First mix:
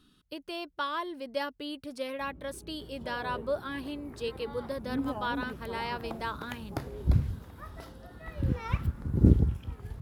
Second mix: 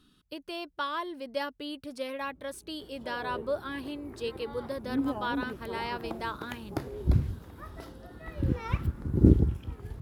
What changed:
first sound −9.5 dB
second sound: add parametric band 340 Hz +6 dB 0.65 octaves

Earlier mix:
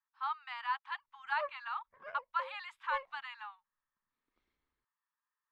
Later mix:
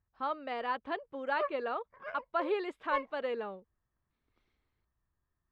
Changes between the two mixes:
speech: remove Butterworth high-pass 850 Hz 96 dB per octave
background +5.0 dB

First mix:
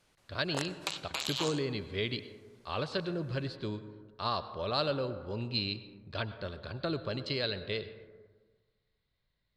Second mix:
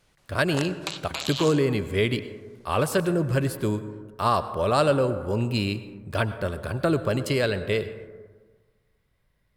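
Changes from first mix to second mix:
speech: remove transistor ladder low-pass 4,500 Hz, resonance 70%
background +3.5 dB

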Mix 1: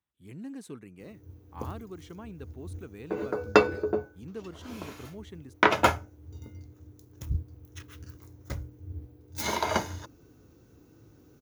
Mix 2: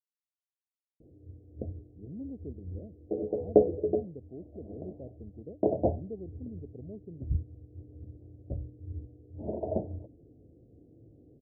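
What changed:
speech: entry +1.75 s
master: add Butterworth low-pass 700 Hz 72 dB per octave

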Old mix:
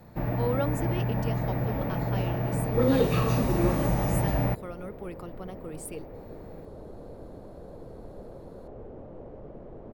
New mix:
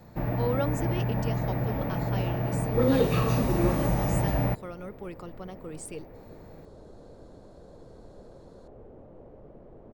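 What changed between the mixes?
speech: add low-pass with resonance 7,200 Hz, resonance Q 1.6
second sound −5.5 dB

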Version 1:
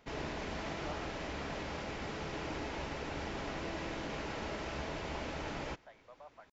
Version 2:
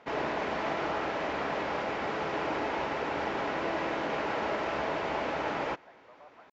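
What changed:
background +11.5 dB
master: add resonant band-pass 890 Hz, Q 0.6

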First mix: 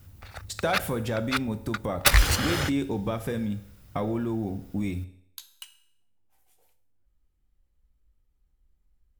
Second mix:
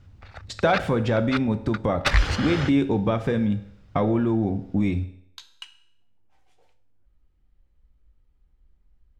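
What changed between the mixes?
speech +7.0 dB
master: add high-frequency loss of the air 140 metres

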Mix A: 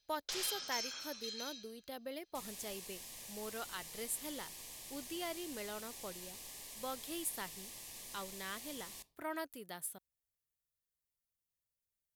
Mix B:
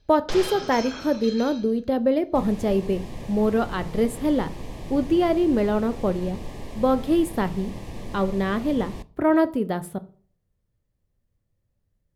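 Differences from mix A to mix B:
speech: send on
second sound: add high-shelf EQ 4,900 Hz −7 dB
master: remove first-order pre-emphasis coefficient 0.97

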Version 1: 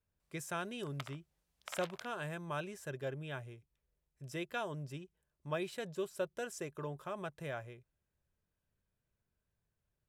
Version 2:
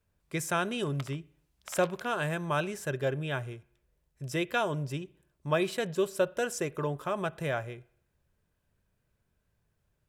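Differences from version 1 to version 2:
speech +8.0 dB
reverb: on, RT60 0.60 s

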